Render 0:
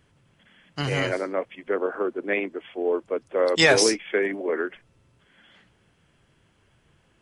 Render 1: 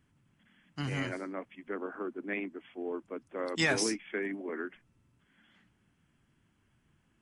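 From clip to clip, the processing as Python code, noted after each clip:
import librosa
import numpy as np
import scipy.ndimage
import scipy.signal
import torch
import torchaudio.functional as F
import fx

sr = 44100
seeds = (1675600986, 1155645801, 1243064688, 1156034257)

y = fx.graphic_eq(x, sr, hz=(250, 500, 4000), db=(7, -9, -5))
y = y * librosa.db_to_amplitude(-8.5)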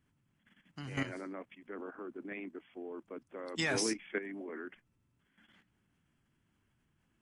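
y = fx.level_steps(x, sr, step_db=11)
y = y * librosa.db_to_amplitude(1.0)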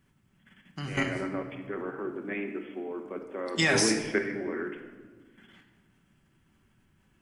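y = fx.room_shoebox(x, sr, seeds[0], volume_m3=1300.0, walls='mixed', distance_m=1.1)
y = y * librosa.db_to_amplitude(7.5)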